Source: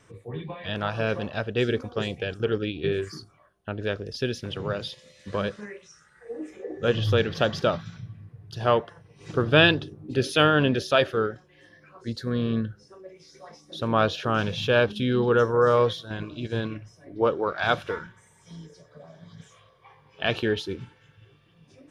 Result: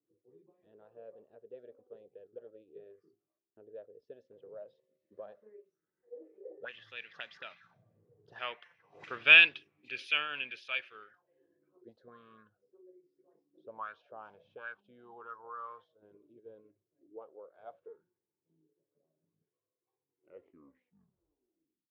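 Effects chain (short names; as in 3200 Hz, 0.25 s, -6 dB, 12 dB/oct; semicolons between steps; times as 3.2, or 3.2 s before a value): tape stop at the end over 1.90 s; Doppler pass-by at 9.19, 10 m/s, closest 4.2 m; auto-wah 320–2400 Hz, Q 5.4, up, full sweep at -35 dBFS; gain +8.5 dB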